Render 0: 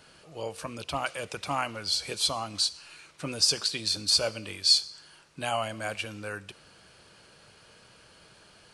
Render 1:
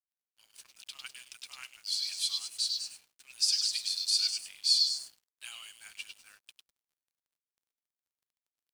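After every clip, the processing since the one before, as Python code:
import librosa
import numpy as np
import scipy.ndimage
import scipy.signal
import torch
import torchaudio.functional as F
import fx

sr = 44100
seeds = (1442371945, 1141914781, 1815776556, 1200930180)

y = scipy.signal.sosfilt(scipy.signal.bessel(4, 2800.0, 'highpass', norm='mag', fs=sr, output='sos'), x)
y = fx.echo_stepped(y, sr, ms=101, hz=4100.0, octaves=0.7, feedback_pct=70, wet_db=-1.5)
y = np.sign(y) * np.maximum(np.abs(y) - 10.0 ** (-49.5 / 20.0), 0.0)
y = y * 10.0 ** (-3.5 / 20.0)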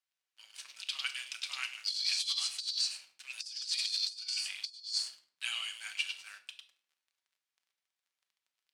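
y = fx.bandpass_q(x, sr, hz=2500.0, q=0.6)
y = fx.room_shoebox(y, sr, seeds[0], volume_m3=720.0, walls='furnished', distance_m=1.1)
y = fx.over_compress(y, sr, threshold_db=-38.0, ratio=-0.5)
y = y * 10.0 ** (3.5 / 20.0)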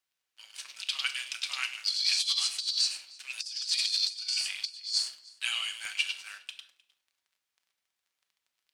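y = x + 10.0 ** (-24.0 / 20.0) * np.pad(x, (int(308 * sr / 1000.0), 0))[:len(x)]
y = fx.buffer_crackle(y, sr, first_s=0.81, period_s=0.72, block=64, kind='repeat')
y = y * 10.0 ** (5.0 / 20.0)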